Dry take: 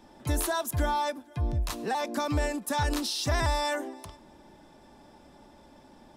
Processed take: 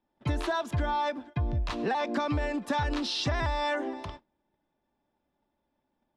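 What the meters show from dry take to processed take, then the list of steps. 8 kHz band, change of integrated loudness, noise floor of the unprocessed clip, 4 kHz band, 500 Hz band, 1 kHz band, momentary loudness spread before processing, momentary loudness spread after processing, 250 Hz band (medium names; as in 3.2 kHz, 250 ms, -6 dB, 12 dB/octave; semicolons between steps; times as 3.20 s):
-11.5 dB, -0.5 dB, -55 dBFS, -1.0 dB, 0.0 dB, -0.5 dB, 6 LU, 4 LU, +1.0 dB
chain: Chebyshev low-pass 3.1 kHz, order 2; gate -49 dBFS, range -31 dB; compression, threshold -33 dBFS, peak gain reduction 9.5 dB; trim +7 dB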